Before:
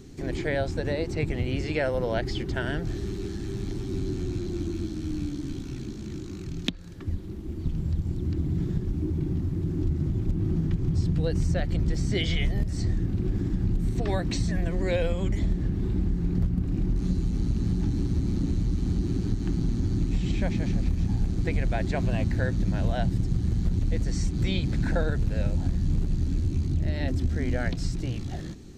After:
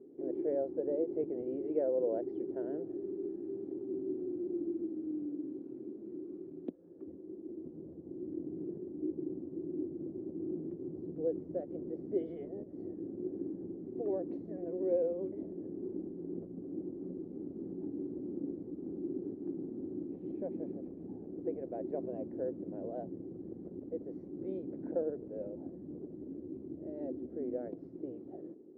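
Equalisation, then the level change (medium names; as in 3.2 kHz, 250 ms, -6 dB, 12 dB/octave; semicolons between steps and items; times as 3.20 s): Butterworth band-pass 410 Hz, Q 1.6; -1.5 dB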